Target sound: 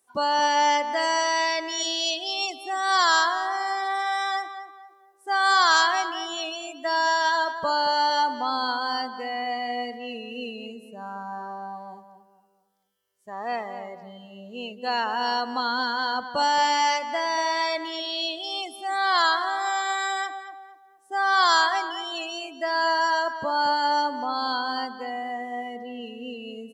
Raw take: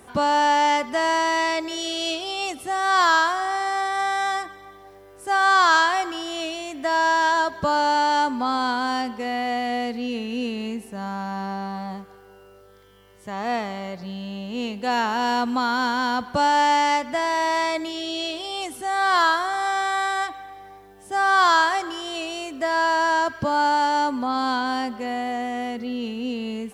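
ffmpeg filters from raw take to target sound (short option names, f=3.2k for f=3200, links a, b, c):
-filter_complex "[0:a]afftdn=nr=24:nf=-30,bass=f=250:g=-15,treble=f=4k:g=14,asplit=2[a][b];[b]adelay=229,lowpass=f=2.1k:p=1,volume=-9.5dB,asplit=2[c][d];[d]adelay=229,lowpass=f=2.1k:p=1,volume=0.36,asplit=2[e][f];[f]adelay=229,lowpass=f=2.1k:p=1,volume=0.36,asplit=2[g][h];[h]adelay=229,lowpass=f=2.1k:p=1,volume=0.36[i];[a][c][e][g][i]amix=inputs=5:normalize=0,volume=-3dB"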